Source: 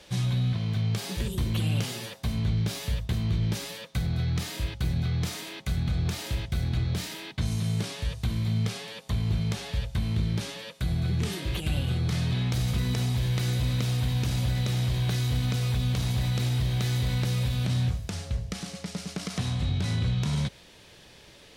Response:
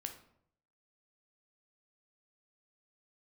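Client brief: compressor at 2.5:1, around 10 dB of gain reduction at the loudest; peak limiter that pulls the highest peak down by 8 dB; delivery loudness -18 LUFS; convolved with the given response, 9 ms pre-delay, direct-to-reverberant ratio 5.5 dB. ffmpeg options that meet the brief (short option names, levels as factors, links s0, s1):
-filter_complex "[0:a]acompressor=threshold=0.0112:ratio=2.5,alimiter=level_in=2.37:limit=0.0631:level=0:latency=1,volume=0.422,asplit=2[s0][s1];[1:a]atrim=start_sample=2205,adelay=9[s2];[s1][s2]afir=irnorm=-1:irlink=0,volume=0.708[s3];[s0][s3]amix=inputs=2:normalize=0,volume=10.6"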